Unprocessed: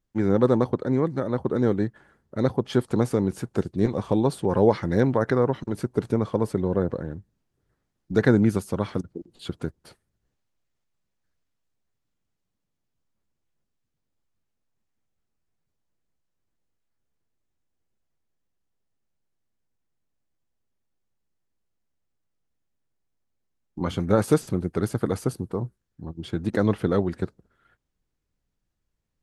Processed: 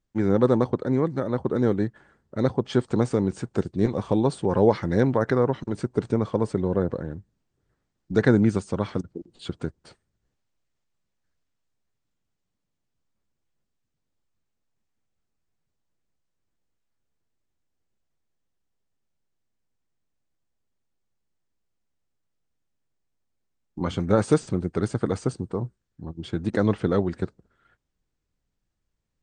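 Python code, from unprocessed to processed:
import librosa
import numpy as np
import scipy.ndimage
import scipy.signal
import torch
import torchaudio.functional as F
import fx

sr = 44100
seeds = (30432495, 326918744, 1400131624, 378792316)

y = fx.brickwall_lowpass(x, sr, high_hz=9100.0)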